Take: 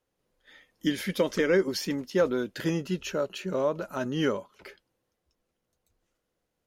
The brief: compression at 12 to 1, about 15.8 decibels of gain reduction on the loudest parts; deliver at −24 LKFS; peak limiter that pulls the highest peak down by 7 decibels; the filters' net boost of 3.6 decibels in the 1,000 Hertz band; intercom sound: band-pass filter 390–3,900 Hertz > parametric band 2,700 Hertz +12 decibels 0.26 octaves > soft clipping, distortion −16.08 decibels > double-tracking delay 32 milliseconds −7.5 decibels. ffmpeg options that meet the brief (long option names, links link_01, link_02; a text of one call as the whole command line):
ffmpeg -i in.wav -filter_complex "[0:a]equalizer=frequency=1000:width_type=o:gain=4.5,acompressor=threshold=-34dB:ratio=12,alimiter=level_in=5.5dB:limit=-24dB:level=0:latency=1,volume=-5.5dB,highpass=390,lowpass=3900,equalizer=frequency=2700:width_type=o:width=0.26:gain=12,asoftclip=threshold=-35dB,asplit=2[link_01][link_02];[link_02]adelay=32,volume=-7.5dB[link_03];[link_01][link_03]amix=inputs=2:normalize=0,volume=19.5dB" out.wav